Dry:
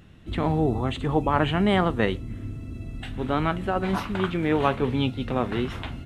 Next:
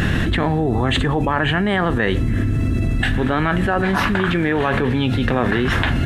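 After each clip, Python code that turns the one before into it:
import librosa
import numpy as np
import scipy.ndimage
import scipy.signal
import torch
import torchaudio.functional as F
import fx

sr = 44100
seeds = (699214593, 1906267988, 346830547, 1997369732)

y = fx.peak_eq(x, sr, hz=1700.0, db=12.5, octaves=0.27)
y = fx.env_flatten(y, sr, amount_pct=100)
y = y * 10.0 ** (-1.0 / 20.0)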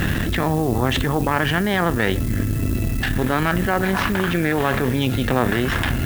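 y = fx.dmg_noise_colour(x, sr, seeds[0], colour='blue', level_db=-36.0)
y = fx.cheby_harmonics(y, sr, harmonics=(4,), levels_db=(-14,), full_scale_db=-1.0)
y = y * 10.0 ** (-3.0 / 20.0)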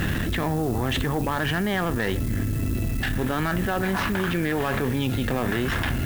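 y = 10.0 ** (-11.5 / 20.0) * np.tanh(x / 10.0 ** (-11.5 / 20.0))
y = y * 10.0 ** (-3.0 / 20.0)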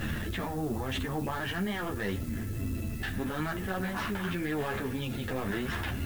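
y = fx.ensemble(x, sr)
y = y * 10.0 ** (-5.0 / 20.0)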